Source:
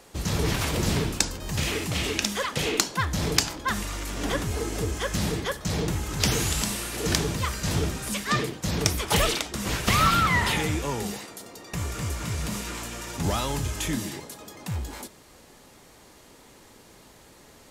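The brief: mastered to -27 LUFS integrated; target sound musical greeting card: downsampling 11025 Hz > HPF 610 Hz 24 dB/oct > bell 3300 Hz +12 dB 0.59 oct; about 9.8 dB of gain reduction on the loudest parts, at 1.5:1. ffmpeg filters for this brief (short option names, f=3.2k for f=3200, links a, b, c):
-af "acompressor=threshold=-46dB:ratio=1.5,aresample=11025,aresample=44100,highpass=f=610:w=0.5412,highpass=f=610:w=1.3066,equalizer=f=3.3k:t=o:w=0.59:g=12,volume=6.5dB"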